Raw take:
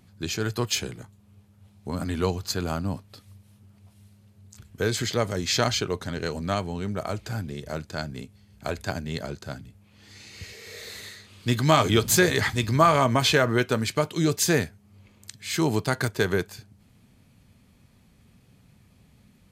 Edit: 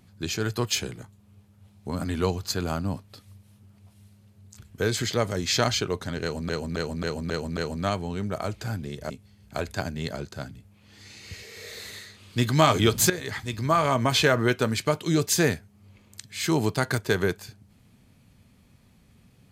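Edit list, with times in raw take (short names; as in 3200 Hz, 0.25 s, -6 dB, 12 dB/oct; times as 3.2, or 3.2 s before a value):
6.22–6.49 loop, 6 plays
7.75–8.2 cut
12.2–13.38 fade in, from -13.5 dB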